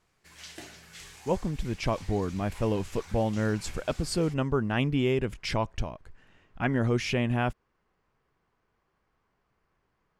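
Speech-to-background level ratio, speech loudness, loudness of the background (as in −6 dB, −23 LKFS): 18.5 dB, −29.5 LKFS, −48.0 LKFS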